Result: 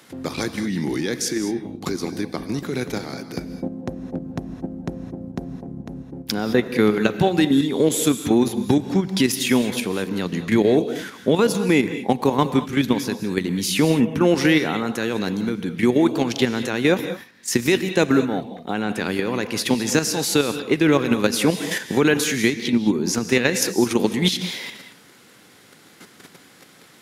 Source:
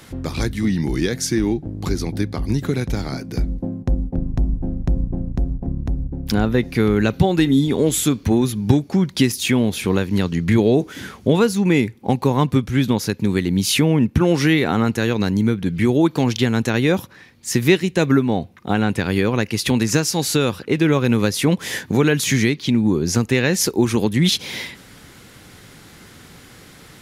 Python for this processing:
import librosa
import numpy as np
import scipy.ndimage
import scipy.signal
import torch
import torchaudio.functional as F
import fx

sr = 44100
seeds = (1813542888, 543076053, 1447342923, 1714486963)

y = scipy.signal.sosfilt(scipy.signal.butter(2, 210.0, 'highpass', fs=sr, output='sos'), x)
y = fx.level_steps(y, sr, step_db=9)
y = fx.rev_gated(y, sr, seeds[0], gate_ms=240, shape='rising', drr_db=10.0)
y = y * librosa.db_to_amplitude(3.0)